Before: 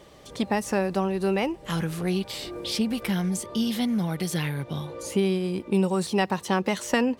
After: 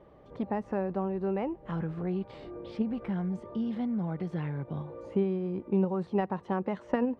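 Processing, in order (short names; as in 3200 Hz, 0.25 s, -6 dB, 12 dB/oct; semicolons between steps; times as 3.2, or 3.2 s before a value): LPF 1200 Hz 12 dB/oct; in parallel at -2 dB: level quantiser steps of 11 dB; on the sum: gain -8 dB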